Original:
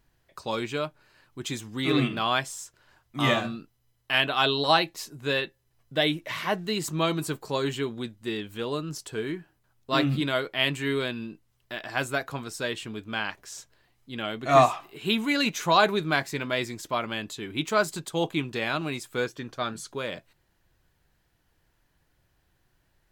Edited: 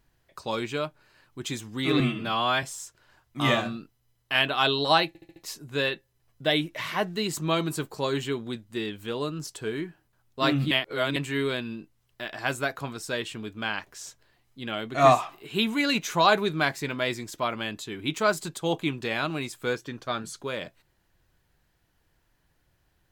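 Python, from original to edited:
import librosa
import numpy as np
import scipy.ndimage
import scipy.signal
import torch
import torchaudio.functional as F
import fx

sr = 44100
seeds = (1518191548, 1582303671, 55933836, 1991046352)

y = fx.edit(x, sr, fx.stretch_span(start_s=2.0, length_s=0.42, factor=1.5),
    fx.stutter(start_s=4.87, slice_s=0.07, count=5),
    fx.reverse_span(start_s=10.22, length_s=0.45), tone=tone)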